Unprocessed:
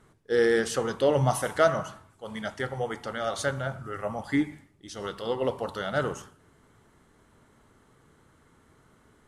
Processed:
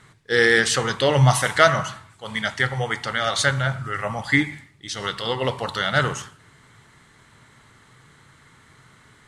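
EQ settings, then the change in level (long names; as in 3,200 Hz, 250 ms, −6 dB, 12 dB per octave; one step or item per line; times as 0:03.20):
octave-band graphic EQ 125/1,000/2,000/4,000/8,000 Hz +11/+5/+12/+11/+9 dB
0.0 dB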